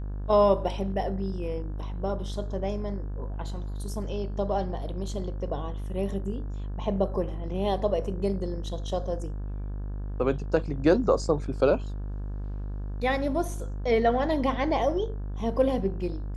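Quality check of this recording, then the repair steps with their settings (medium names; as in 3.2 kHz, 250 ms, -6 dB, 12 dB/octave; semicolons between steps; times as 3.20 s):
buzz 50 Hz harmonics 35 -33 dBFS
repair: de-hum 50 Hz, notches 35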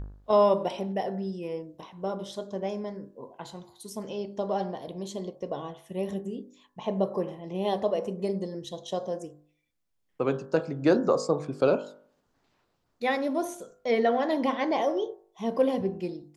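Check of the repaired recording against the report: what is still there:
nothing left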